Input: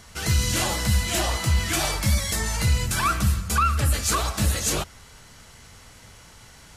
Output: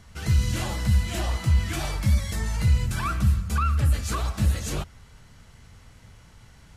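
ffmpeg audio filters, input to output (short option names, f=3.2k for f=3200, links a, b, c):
-af "bass=f=250:g=8,treble=f=4k:g=-5,volume=-6.5dB"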